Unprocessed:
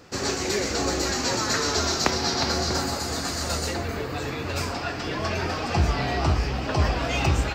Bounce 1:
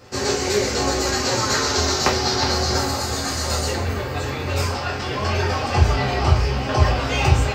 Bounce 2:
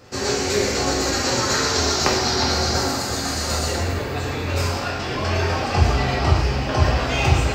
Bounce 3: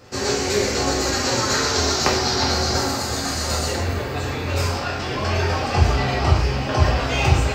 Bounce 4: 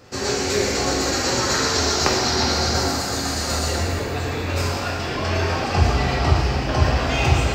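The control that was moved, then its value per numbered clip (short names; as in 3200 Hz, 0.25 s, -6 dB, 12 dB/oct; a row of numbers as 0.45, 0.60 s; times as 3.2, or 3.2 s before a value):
non-linear reverb, gate: 90, 300, 200, 520 ms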